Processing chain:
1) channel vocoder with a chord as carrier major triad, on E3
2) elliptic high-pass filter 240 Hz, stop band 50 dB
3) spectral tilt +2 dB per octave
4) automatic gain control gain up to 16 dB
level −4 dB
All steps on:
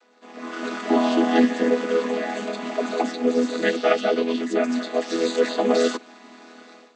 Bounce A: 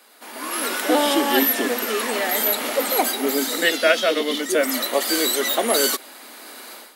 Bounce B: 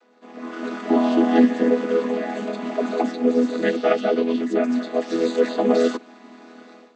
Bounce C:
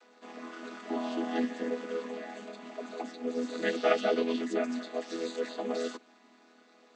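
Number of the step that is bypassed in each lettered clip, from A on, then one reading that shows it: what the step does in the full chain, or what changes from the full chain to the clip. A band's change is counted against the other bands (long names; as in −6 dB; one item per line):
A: 1, 8 kHz band +13.0 dB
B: 3, 4 kHz band −5.0 dB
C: 4, change in crest factor +4.5 dB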